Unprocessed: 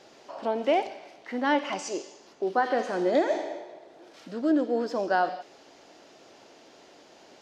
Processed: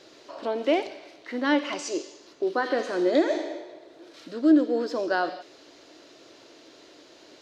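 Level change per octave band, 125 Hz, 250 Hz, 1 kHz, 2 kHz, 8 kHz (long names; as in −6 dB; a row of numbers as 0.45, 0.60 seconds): can't be measured, +4.5 dB, −3.5 dB, +1.5 dB, +2.0 dB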